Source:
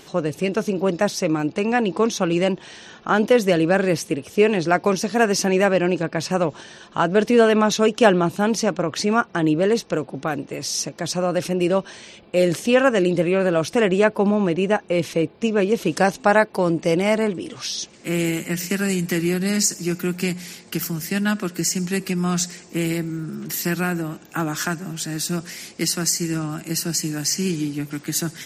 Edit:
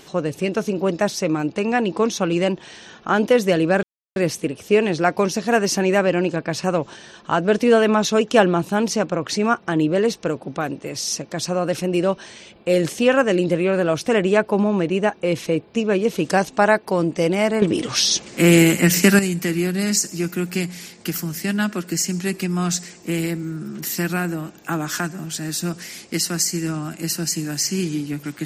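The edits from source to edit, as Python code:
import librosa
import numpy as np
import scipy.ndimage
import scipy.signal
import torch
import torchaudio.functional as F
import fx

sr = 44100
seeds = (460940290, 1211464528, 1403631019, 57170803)

y = fx.edit(x, sr, fx.insert_silence(at_s=3.83, length_s=0.33),
    fx.clip_gain(start_s=17.29, length_s=1.57, db=9.5), tone=tone)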